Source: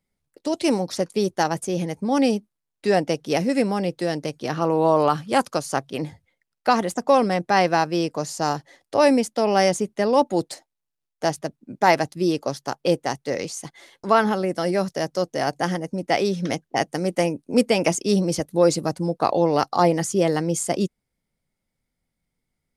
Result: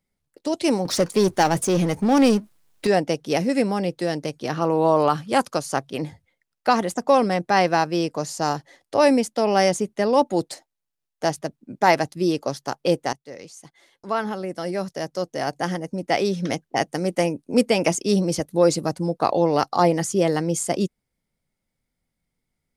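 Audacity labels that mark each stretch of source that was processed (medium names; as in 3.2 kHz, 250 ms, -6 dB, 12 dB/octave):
0.850000	2.870000	power-law waveshaper exponent 0.7
13.130000	16.320000	fade in, from -15 dB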